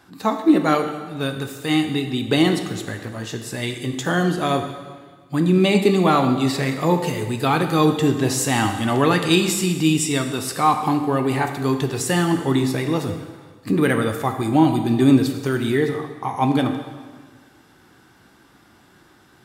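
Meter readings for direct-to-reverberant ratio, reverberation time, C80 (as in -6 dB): 5.5 dB, 1.5 s, 9.0 dB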